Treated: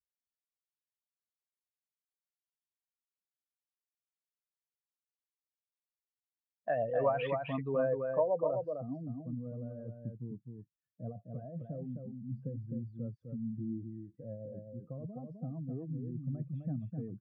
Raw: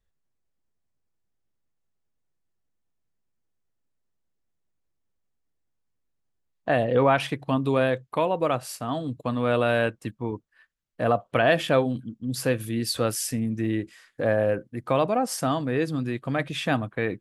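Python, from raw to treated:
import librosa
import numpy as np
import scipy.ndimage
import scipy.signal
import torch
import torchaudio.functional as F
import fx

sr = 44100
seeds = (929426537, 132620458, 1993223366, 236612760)

p1 = fx.spec_expand(x, sr, power=1.9)
p2 = scipy.signal.sosfilt(scipy.signal.butter(2, 150.0, 'highpass', fs=sr, output='sos'), p1)
p3 = fx.peak_eq(p2, sr, hz=290.0, db=-12.5, octaves=1.5)
p4 = fx.notch(p3, sr, hz=890.0, q=14.0)
p5 = fx.rider(p4, sr, range_db=4, speed_s=0.5)
p6 = p4 + (p5 * librosa.db_to_amplitude(-3.0))
p7 = fx.env_lowpass_down(p6, sr, base_hz=780.0, full_db=-15.0)
p8 = fx.rotary_switch(p7, sr, hz=0.65, then_hz=8.0, switch_at_s=3.42)
p9 = fx.filter_sweep_lowpass(p8, sr, from_hz=11000.0, to_hz=200.0, start_s=6.05, end_s=9.21, q=1.3)
p10 = p9 + fx.echo_single(p9, sr, ms=257, db=-5.0, dry=0)
y = p10 * librosa.db_to_amplitude(-6.0)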